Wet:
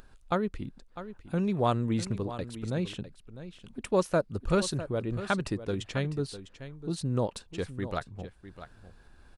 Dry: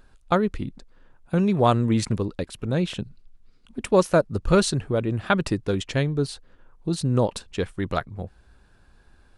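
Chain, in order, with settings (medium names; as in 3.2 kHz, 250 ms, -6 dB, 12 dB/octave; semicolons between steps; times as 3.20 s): upward compressor, threshold -38 dBFS; delay 652 ms -13 dB; trim -7.5 dB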